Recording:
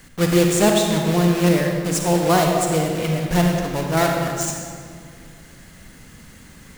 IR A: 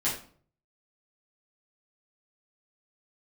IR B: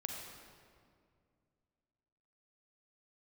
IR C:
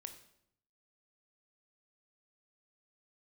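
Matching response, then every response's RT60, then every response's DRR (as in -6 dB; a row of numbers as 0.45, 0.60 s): B; 0.50, 2.2, 0.75 s; -9.0, 1.0, 7.0 dB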